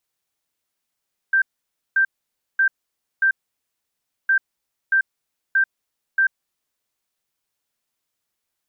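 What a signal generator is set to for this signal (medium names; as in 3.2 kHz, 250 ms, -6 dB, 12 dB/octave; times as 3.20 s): beep pattern sine 1.57 kHz, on 0.09 s, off 0.54 s, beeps 4, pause 0.98 s, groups 2, -13.5 dBFS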